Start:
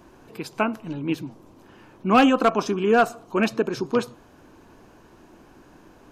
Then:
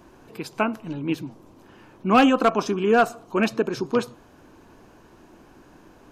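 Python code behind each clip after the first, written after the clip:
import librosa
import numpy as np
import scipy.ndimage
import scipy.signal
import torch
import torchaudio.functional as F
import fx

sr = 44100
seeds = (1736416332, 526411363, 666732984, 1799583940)

y = x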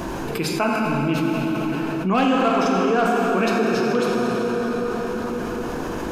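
y = fx.rev_plate(x, sr, seeds[0], rt60_s=3.6, hf_ratio=0.75, predelay_ms=0, drr_db=-1.5)
y = fx.env_flatten(y, sr, amount_pct=70)
y = y * 10.0 ** (-6.0 / 20.0)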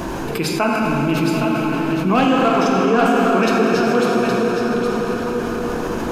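y = x + 10.0 ** (-6.5 / 20.0) * np.pad(x, (int(816 * sr / 1000.0), 0))[:len(x)]
y = y * 10.0 ** (3.0 / 20.0)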